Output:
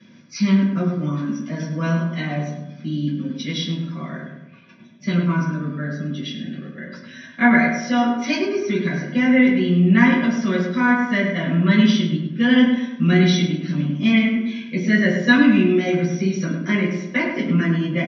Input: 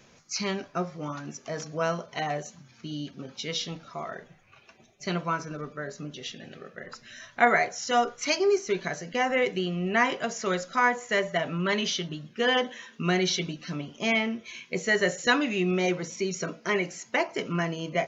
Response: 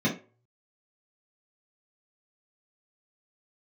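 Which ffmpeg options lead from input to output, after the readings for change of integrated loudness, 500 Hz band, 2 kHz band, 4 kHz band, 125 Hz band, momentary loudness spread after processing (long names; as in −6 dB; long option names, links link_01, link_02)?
+9.0 dB, +2.5 dB, +6.0 dB, +3.0 dB, +14.5 dB, 14 LU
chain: -filter_complex "[0:a]crystalizer=i=3:c=0,highpass=130,equalizer=frequency=270:width_type=q:width=4:gain=6,equalizer=frequency=450:width_type=q:width=4:gain=-7,equalizer=frequency=690:width_type=q:width=4:gain=-7,equalizer=frequency=1700:width_type=q:width=4:gain=3,lowpass=frequency=4800:width=0.5412,lowpass=frequency=4800:width=1.3066,asplit=2[link_01][link_02];[link_02]adelay=102,lowpass=frequency=2200:poles=1,volume=-5dB,asplit=2[link_03][link_04];[link_04]adelay=102,lowpass=frequency=2200:poles=1,volume=0.49,asplit=2[link_05][link_06];[link_06]adelay=102,lowpass=frequency=2200:poles=1,volume=0.49,asplit=2[link_07][link_08];[link_08]adelay=102,lowpass=frequency=2200:poles=1,volume=0.49,asplit=2[link_09][link_10];[link_10]adelay=102,lowpass=frequency=2200:poles=1,volume=0.49,asplit=2[link_11][link_12];[link_12]adelay=102,lowpass=frequency=2200:poles=1,volume=0.49[link_13];[link_01][link_03][link_05][link_07][link_09][link_11][link_13]amix=inputs=7:normalize=0[link_14];[1:a]atrim=start_sample=2205,asetrate=41013,aresample=44100[link_15];[link_14][link_15]afir=irnorm=-1:irlink=0,volume=-10dB"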